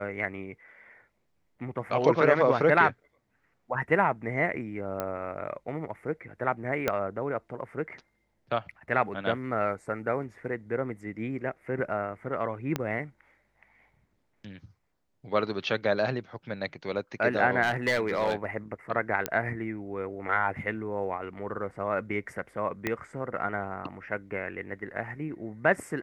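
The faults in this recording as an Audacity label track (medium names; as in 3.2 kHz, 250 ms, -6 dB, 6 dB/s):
5.000000	5.000000	pop -16 dBFS
6.880000	6.880000	pop -11 dBFS
12.760000	12.760000	pop -14 dBFS
17.620000	18.450000	clipped -20.5 dBFS
19.260000	19.260000	pop -11 dBFS
22.870000	22.870000	pop -14 dBFS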